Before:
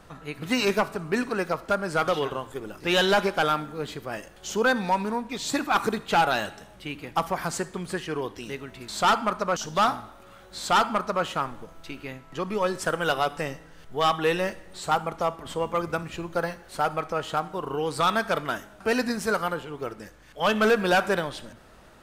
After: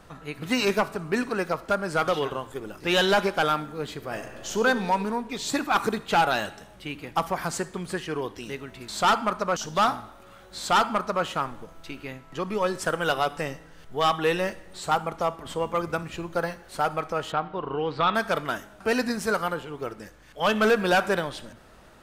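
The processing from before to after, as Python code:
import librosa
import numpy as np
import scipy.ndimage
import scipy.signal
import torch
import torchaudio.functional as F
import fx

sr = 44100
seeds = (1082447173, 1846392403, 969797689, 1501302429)

y = fx.reverb_throw(x, sr, start_s=3.94, length_s=0.67, rt60_s=2.3, drr_db=6.0)
y = fx.lowpass(y, sr, hz=3800.0, slope=24, at=(17.32, 18.15))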